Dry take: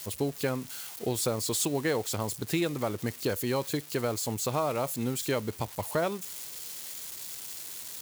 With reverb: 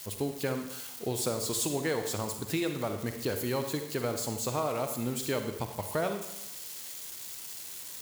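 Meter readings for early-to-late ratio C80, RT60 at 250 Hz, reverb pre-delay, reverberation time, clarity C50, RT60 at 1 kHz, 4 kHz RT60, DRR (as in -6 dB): 9.5 dB, 0.90 s, 38 ms, 0.90 s, 7.0 dB, 0.90 s, 0.80 s, 6.0 dB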